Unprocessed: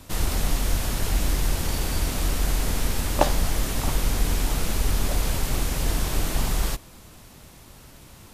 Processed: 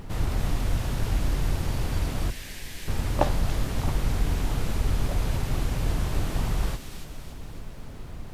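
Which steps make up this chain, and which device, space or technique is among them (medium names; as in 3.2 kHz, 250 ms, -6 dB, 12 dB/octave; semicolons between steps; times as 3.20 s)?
2.30–2.88 s: steep high-pass 1.6 kHz 96 dB/octave; car interior (peaking EQ 110 Hz +7.5 dB 0.88 oct; treble shelf 3.6 kHz -7.5 dB; brown noise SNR 11 dB); treble shelf 4.3 kHz -5 dB; feedback echo behind a high-pass 285 ms, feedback 53%, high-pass 2.7 kHz, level -3 dB; trim -3 dB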